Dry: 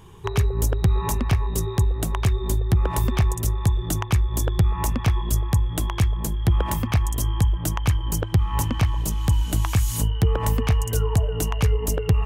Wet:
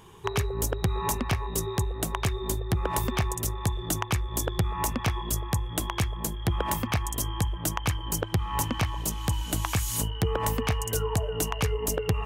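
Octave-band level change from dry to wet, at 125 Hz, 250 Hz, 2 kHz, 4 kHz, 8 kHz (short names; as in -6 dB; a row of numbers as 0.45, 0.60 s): -8.0, -4.0, 0.0, 0.0, 0.0 dB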